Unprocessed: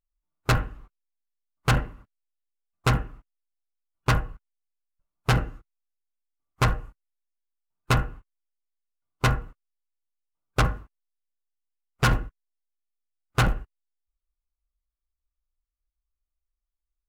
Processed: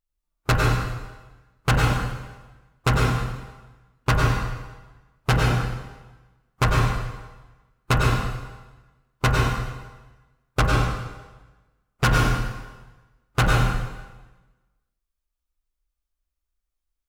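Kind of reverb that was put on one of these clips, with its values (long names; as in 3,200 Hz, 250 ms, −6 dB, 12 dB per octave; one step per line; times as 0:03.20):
dense smooth reverb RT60 1.2 s, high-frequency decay 0.9×, pre-delay 85 ms, DRR −1.5 dB
level +1 dB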